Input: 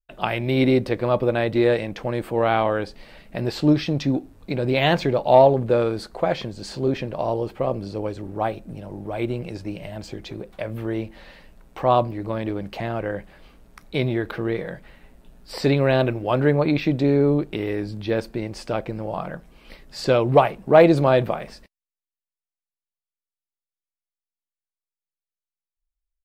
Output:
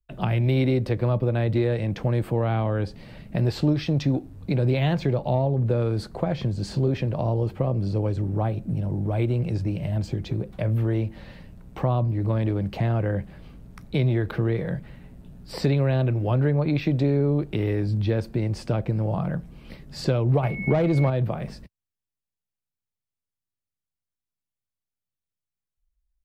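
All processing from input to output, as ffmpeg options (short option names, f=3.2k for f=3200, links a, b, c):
-filter_complex "[0:a]asettb=1/sr,asplit=3[a][b][c];[a]atrim=end=20.434[d];[b]atrim=start=20.43:end=21.1,asetpts=PTS-STARTPTS,afade=t=in:d=0.004:c=qsin,afade=t=out:st=0.666:d=0.004:c=qsin,aeval=exprs='val(0)+0.0282*sin(2*PI*2200*n/s)':c=same,acontrast=76[e];[c]atrim=start=21.096[f];[d][e]acrossfade=d=0.004:c1=hsin:c2=qsin[g];[g][f]acrossfade=d=0.004:c1=qsin:c2=hsin,lowshelf=f=150:g=8,acrossover=split=87|390[h][i][j];[h]acompressor=threshold=-47dB:ratio=4[k];[i]acompressor=threshold=-33dB:ratio=4[l];[j]acompressor=threshold=-26dB:ratio=4[m];[k][l][m]amix=inputs=3:normalize=0,equalizer=f=110:w=0.52:g=14.5,volume=-3dB"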